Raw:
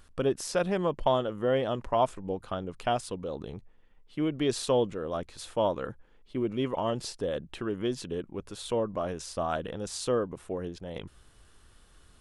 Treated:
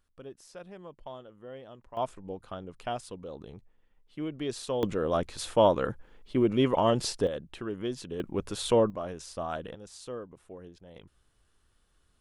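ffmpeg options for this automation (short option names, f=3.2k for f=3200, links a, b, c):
-af "asetnsamples=n=441:p=0,asendcmd='1.97 volume volume -6dB;4.83 volume volume 5.5dB;7.27 volume volume -3dB;8.2 volume volume 6dB;8.9 volume volume -4dB;9.75 volume volume -11.5dB',volume=-18dB"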